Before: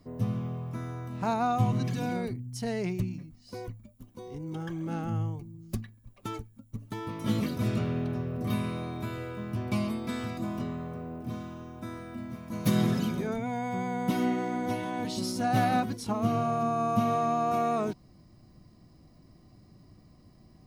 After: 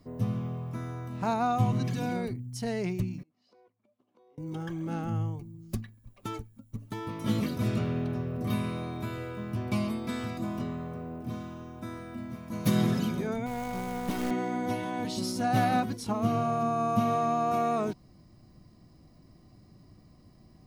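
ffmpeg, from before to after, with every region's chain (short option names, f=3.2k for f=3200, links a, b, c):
-filter_complex "[0:a]asettb=1/sr,asplit=3[a][b][c];[a]atrim=end=3.234[d];[b]atrim=start=3.23:end=4.38,asetpts=PTS-STARTPTS,afade=t=in:d=0.004:c=qsin,afade=t=out:st=1.146:d=0.004:c=qsin,equalizer=f=1.8k:w=1.5:g=-5.5,acompressor=threshold=-53dB:ratio=16:attack=3.2:release=140:knee=1:detection=peak,highpass=460,lowpass=2.5k[e];[c]atrim=start=4.376[f];[d][e]acrossfade=d=0.004:c1=hsin:c2=qsin[g];[g][f]acrossfade=d=0.004:c1=qsin:c2=hsin,asettb=1/sr,asplit=3[h][i][j];[h]atrim=end=13.464[k];[i]atrim=start=13.46:end=14.31,asetpts=PTS-STARTPTS,afade=t=in:d=0.004:c=qsin,afade=t=out:st=0.846:d=0.004:c=qsin,aeval=exprs='val(0)+0.00447*(sin(2*PI*50*n/s)+sin(2*PI*2*50*n/s)/2+sin(2*PI*3*50*n/s)/3+sin(2*PI*4*50*n/s)/4+sin(2*PI*5*50*n/s)/5)':c=same,aeval=exprs='(tanh(17.8*val(0)+0.6)-tanh(0.6))/17.8':c=same,acrusher=bits=3:mode=log:mix=0:aa=0.000001[l];[j]atrim=start=14.306[m];[k][l]acrossfade=d=0.004:c1=hsin:c2=qsin[n];[n][m]acrossfade=d=0.004:c1=qsin:c2=hsin"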